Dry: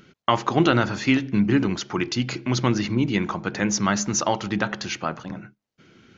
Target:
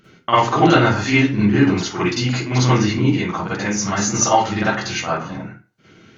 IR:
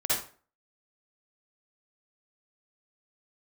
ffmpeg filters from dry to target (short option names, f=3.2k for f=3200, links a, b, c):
-filter_complex "[0:a]asettb=1/sr,asplit=3[a][b][c];[a]atrim=end=3.084[d];[b]atrim=start=3.08:end=3.93,asetpts=PTS-STARTPTS,afade=t=in:d=0.004:c=qsin,afade=t=out:st=0.846:d=0.004:c=qsin,acompressor=threshold=-23dB:ratio=6[e];[c]atrim=start=3.926[f];[d][e]acrossfade=d=0.004:c1=hsin:c2=qsin[g];[g][f]acrossfade=d=0.004:c1=qsin:c2=hsin[h];[1:a]atrim=start_sample=2205,asetrate=52920,aresample=44100[i];[h][i]afir=irnorm=-1:irlink=0,volume=-1.5dB"